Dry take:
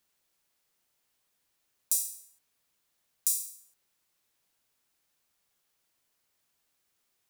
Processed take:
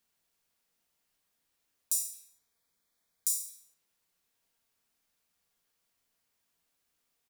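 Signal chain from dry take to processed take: 2.11–3.53 s: Butterworth band-stop 2.8 kHz, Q 4.8; speakerphone echo 220 ms, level -14 dB; reverberation, pre-delay 4 ms, DRR 5 dB; trim -3.5 dB

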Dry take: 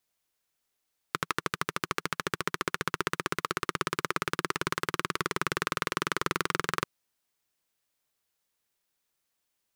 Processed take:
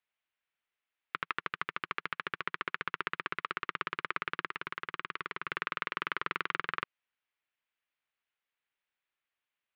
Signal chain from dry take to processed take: low-pass 2.8 kHz 24 dB/octave; tilt shelf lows -8 dB; 4.45–5.47 s: level held to a coarse grid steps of 11 dB; trim -6 dB

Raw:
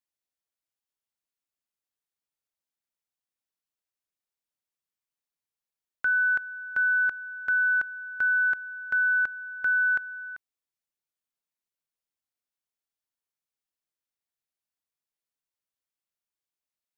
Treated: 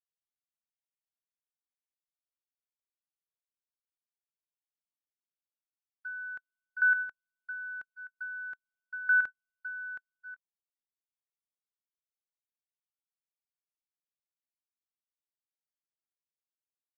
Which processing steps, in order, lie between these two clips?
compression 4:1, threshold -28 dBFS, peak gain reduction 5.5 dB; square tremolo 0.88 Hz, depth 65%, duty 10%; gate -37 dBFS, range -52 dB; trim +6 dB

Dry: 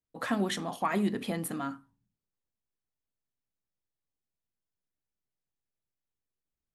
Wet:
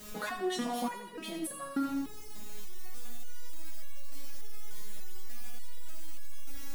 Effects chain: jump at every zero crossing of -41.5 dBFS; compression 10:1, threshold -36 dBFS, peak gain reduction 13 dB; on a send: two-band feedback delay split 410 Hz, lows 255 ms, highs 86 ms, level -7 dB; on the sum: resonator arpeggio 3.4 Hz 210–560 Hz; trim +18 dB

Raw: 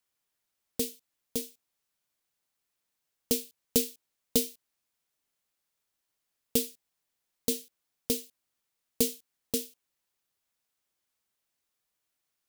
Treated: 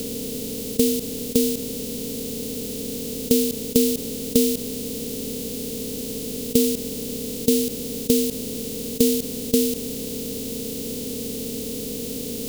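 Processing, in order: spectral levelling over time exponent 0.2; resonant low shelf 540 Hz +8.5 dB, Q 1.5; trim -1 dB

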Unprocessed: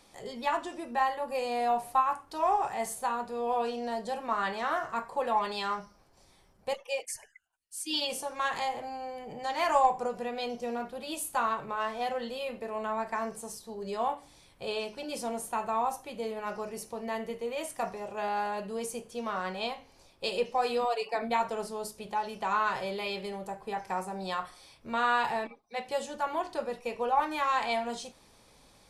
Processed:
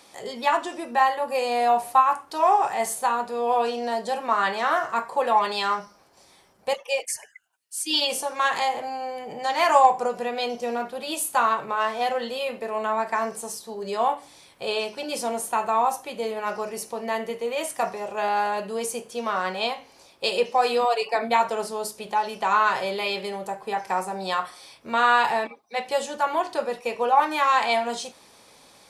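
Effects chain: high-pass 330 Hz 6 dB/octave; trim +8.5 dB

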